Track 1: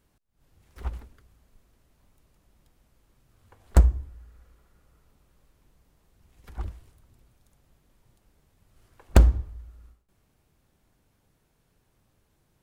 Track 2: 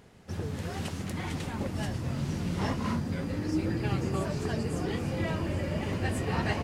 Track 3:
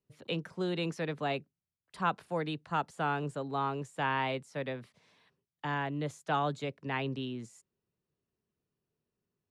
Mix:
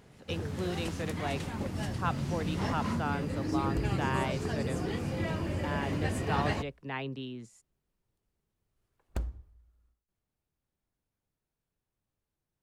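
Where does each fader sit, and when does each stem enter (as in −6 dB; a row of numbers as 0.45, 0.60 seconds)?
−19.0, −2.0, −2.5 decibels; 0.00, 0.00, 0.00 seconds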